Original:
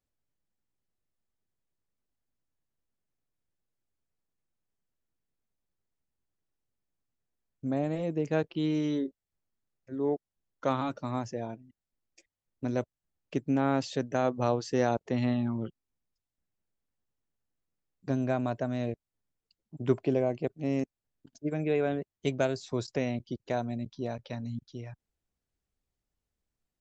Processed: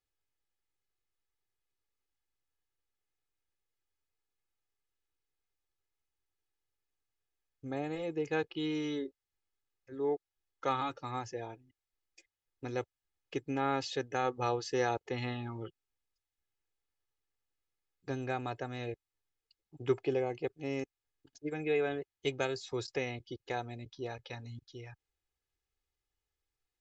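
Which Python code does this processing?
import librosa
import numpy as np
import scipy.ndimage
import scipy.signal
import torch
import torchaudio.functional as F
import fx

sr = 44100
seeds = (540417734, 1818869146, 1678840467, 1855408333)

y = fx.lowpass(x, sr, hz=1800.0, slope=6)
y = fx.tilt_shelf(y, sr, db=-8.0, hz=1300.0)
y = y + 0.7 * np.pad(y, (int(2.4 * sr / 1000.0), 0))[:len(y)]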